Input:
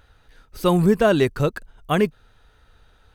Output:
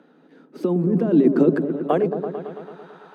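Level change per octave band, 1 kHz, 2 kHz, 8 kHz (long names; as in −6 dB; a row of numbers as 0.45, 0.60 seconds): −4.0 dB, −10.0 dB, below −15 dB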